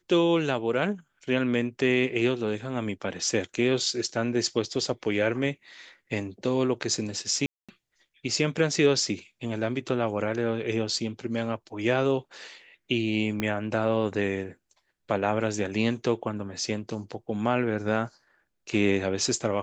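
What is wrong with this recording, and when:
0:07.46–0:07.69: drop-out 226 ms
0:13.40: click −14 dBFS

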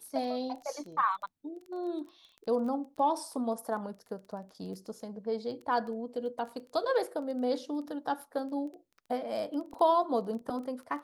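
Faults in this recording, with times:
surface crackle 13 per second −40 dBFS

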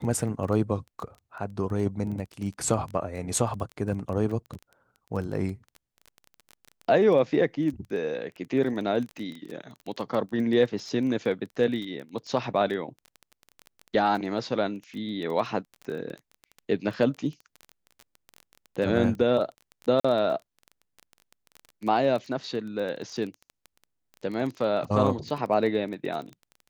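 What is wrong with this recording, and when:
surface crackle 16 per second −32 dBFS
0:20.00–0:20.05: drop-out 45 ms

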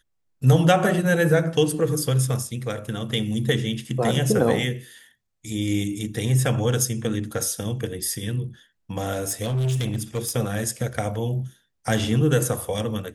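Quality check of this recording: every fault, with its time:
0:09.14–0:10.31: clipping −20.5 dBFS

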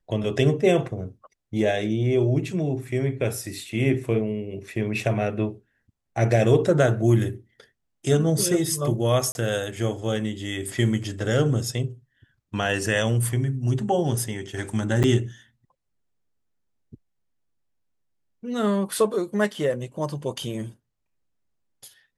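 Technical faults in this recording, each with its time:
0:09.32–0:09.35: drop-out 31 ms
0:15.03–0:15.04: drop-out 8.4 ms

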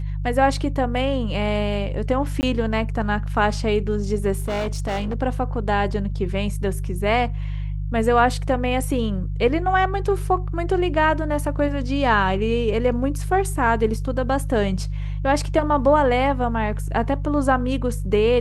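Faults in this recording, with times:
mains hum 50 Hz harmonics 3 −26 dBFS
0:02.41–0:02.43: drop-out 19 ms
0:04.38–0:05.14: clipping −21 dBFS

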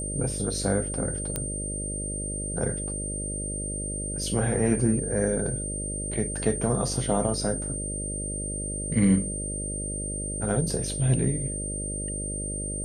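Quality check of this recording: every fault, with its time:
mains buzz 50 Hz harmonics 12 −34 dBFS
whistle 8,800 Hz −32 dBFS
0:01.36: click −12 dBFS

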